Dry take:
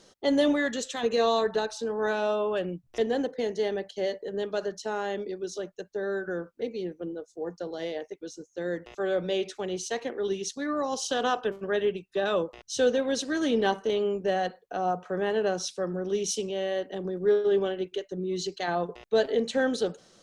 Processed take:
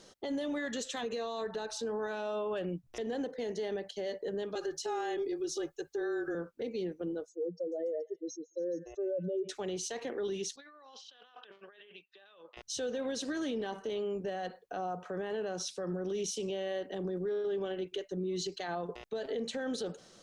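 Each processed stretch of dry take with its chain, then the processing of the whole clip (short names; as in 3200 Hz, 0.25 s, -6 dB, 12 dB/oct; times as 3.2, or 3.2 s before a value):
4.55–6.35 high shelf 5600 Hz +5 dB + comb 2.4 ms, depth 92% + frequency shift -19 Hz
7.29–9.49 spectral contrast raised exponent 2.8 + delay with a stepping band-pass 0.142 s, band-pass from 2000 Hz, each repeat 0.7 oct, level -6 dB
10.56–12.57 LPF 3400 Hz 24 dB/oct + differentiator + negative-ratio compressor -56 dBFS
whole clip: compressor 2.5:1, threshold -29 dBFS; limiter -28.5 dBFS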